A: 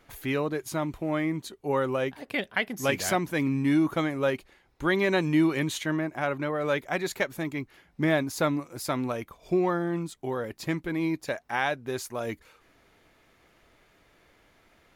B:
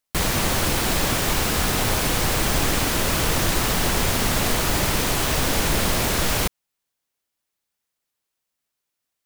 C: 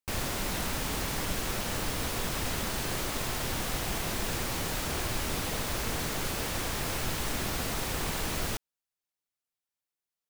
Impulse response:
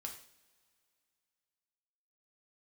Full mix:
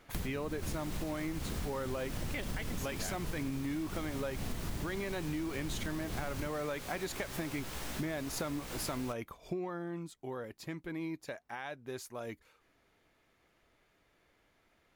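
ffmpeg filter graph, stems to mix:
-filter_complex "[0:a]alimiter=limit=-19.5dB:level=0:latency=1:release=136,afade=type=out:start_time=9.27:duration=0.57:silence=0.334965,asplit=2[link_01][link_02];[1:a]acrossover=split=320[link_03][link_04];[link_04]acompressor=threshold=-44dB:ratio=2[link_05];[link_03][link_05]amix=inputs=2:normalize=0,volume=-4dB[link_06];[2:a]flanger=delay=15.5:depth=2.1:speed=2.8,adelay=550,volume=-5dB[link_07];[link_02]apad=whole_len=407967[link_08];[link_06][link_08]sidechaincompress=threshold=-32dB:ratio=8:attack=16:release=225[link_09];[link_01][link_09][link_07]amix=inputs=3:normalize=0,acompressor=threshold=-34dB:ratio=6"

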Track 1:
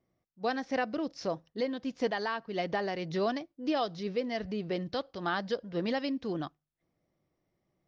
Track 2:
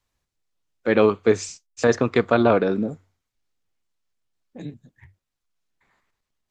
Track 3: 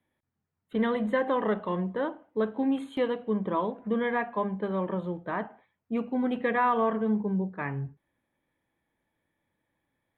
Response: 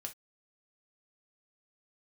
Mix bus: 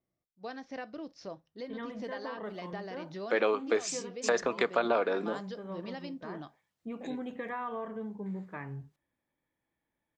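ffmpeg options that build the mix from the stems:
-filter_complex "[0:a]volume=-11.5dB,asplit=3[link_01][link_02][link_03];[link_02]volume=-5.5dB[link_04];[1:a]highpass=470,adelay=2450,volume=0dB[link_05];[2:a]adelay=950,volume=-8dB,asplit=2[link_06][link_07];[link_07]volume=-9dB[link_08];[link_03]apad=whole_len=490689[link_09];[link_06][link_09]sidechaincompress=threshold=-52dB:ratio=8:attack=16:release=251[link_10];[link_01][link_10]amix=inputs=2:normalize=0,acompressor=threshold=-38dB:ratio=6,volume=0dB[link_11];[3:a]atrim=start_sample=2205[link_12];[link_04][link_08]amix=inputs=2:normalize=0[link_13];[link_13][link_12]afir=irnorm=-1:irlink=0[link_14];[link_05][link_11][link_14]amix=inputs=3:normalize=0,acompressor=threshold=-27dB:ratio=2.5"

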